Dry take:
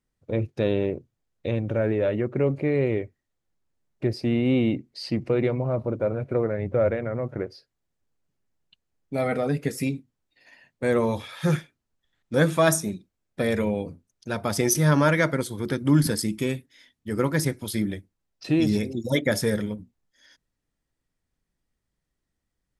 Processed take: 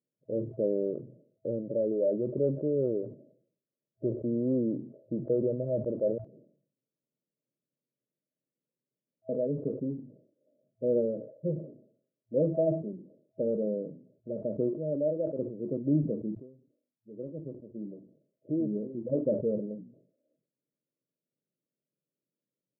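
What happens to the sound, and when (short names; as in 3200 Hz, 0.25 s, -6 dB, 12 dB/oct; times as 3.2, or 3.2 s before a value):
6.18–9.29 room tone
11.05–13.43 low shelf 110 Hz -7.5 dB
14.74–15.39 RIAA curve recording
16.35–19.33 fade in
whole clip: FFT band-pass 110–650 Hz; tilt +3.5 dB/oct; sustainer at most 100 dB/s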